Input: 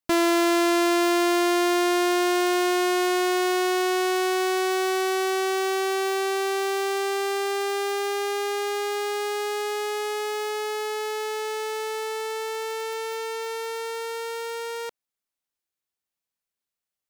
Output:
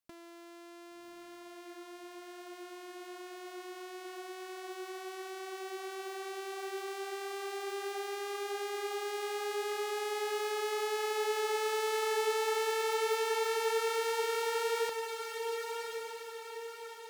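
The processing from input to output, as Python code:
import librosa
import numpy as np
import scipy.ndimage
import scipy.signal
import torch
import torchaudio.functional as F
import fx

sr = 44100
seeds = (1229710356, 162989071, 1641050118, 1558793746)

y = fx.over_compress(x, sr, threshold_db=-30.0, ratio=-0.5)
y = fx.echo_diffused(y, sr, ms=1119, feedback_pct=47, wet_db=-5)
y = y * 10.0 ** (-7.5 / 20.0)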